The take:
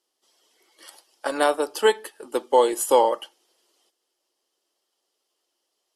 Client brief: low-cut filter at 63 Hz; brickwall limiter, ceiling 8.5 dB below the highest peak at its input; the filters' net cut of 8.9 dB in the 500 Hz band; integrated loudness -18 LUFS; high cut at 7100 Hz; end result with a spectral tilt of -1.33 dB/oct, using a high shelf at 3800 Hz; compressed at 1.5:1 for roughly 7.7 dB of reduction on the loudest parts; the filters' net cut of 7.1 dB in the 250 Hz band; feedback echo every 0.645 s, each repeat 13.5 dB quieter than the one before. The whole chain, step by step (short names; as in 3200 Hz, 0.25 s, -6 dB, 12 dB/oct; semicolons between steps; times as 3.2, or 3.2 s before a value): HPF 63 Hz; LPF 7100 Hz; bell 250 Hz -5.5 dB; bell 500 Hz -8.5 dB; high shelf 3800 Hz -8 dB; compressor 1.5:1, threshold -40 dBFS; limiter -26 dBFS; feedback echo 0.645 s, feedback 21%, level -13.5 dB; gain +22 dB